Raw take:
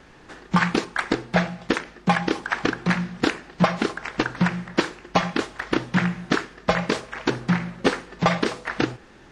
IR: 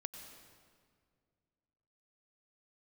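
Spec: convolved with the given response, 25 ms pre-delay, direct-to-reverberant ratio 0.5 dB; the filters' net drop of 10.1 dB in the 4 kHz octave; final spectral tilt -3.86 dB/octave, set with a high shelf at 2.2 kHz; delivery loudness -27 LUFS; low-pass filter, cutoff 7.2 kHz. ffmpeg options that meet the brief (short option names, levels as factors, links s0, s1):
-filter_complex "[0:a]lowpass=7200,highshelf=f=2200:g=-8.5,equalizer=f=4000:t=o:g=-5,asplit=2[s0][s1];[1:a]atrim=start_sample=2205,adelay=25[s2];[s1][s2]afir=irnorm=-1:irlink=0,volume=1.26[s3];[s0][s3]amix=inputs=2:normalize=0,volume=0.708"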